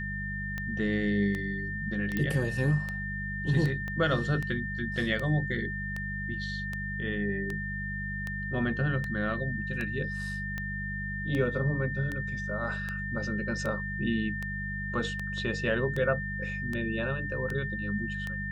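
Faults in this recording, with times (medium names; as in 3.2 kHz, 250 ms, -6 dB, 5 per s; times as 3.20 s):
hum 50 Hz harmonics 4 -37 dBFS
tick 78 rpm -21 dBFS
whine 1.8 kHz -35 dBFS
2.17 s: pop -17 dBFS
3.88 s: pop -24 dBFS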